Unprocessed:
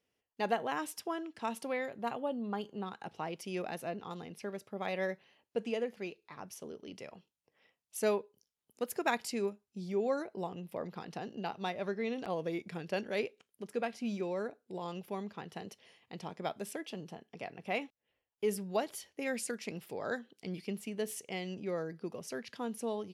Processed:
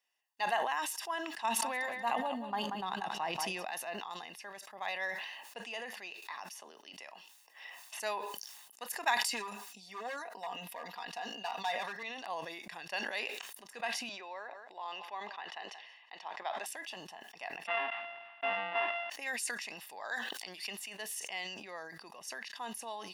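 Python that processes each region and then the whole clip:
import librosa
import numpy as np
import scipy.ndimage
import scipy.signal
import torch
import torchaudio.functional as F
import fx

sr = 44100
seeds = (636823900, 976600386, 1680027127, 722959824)

y = fx.chain(x, sr, fx.peak_eq(hz=150.0, db=11.0, octaves=2.7),
    fx.echo_feedback(ms=184, feedback_pct=28, wet_db=-10),
    fx.sustainer(db_per_s=29.0), at=(1.44, 3.65))
y = fx.chain(y, sr, fx.highpass(hz=200.0, slope=12),
    fx.band_squash(depth_pct=100), at=(6.22, 8.0))
y = fx.chain(y, sr, fx.highpass(hz=170.0, slope=12),
    fx.clip_hard(threshold_db=-31.0),
    fx.comb(ms=4.2, depth=0.69), at=(9.25, 12.03))
y = fx.chain(y, sr, fx.bandpass_edges(low_hz=370.0, high_hz=3700.0),
    fx.echo_single(ms=178, db=-21.5), at=(14.09, 16.66))
y = fx.chain(y, sr, fx.sample_sort(block=64),
    fx.ellip_lowpass(hz=3000.0, order=4, stop_db=80),
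    fx.env_flatten(amount_pct=50), at=(17.67, 19.1))
y = fx.chain(y, sr, fx.highpass(hz=340.0, slope=6),
    fx.pre_swell(db_per_s=89.0), at=(20.02, 20.98))
y = scipy.signal.sosfilt(scipy.signal.butter(2, 830.0, 'highpass', fs=sr, output='sos'), y)
y = y + 0.58 * np.pad(y, (int(1.1 * sr / 1000.0), 0))[:len(y)]
y = fx.sustainer(y, sr, db_per_s=40.0)
y = y * 10.0 ** (1.0 / 20.0)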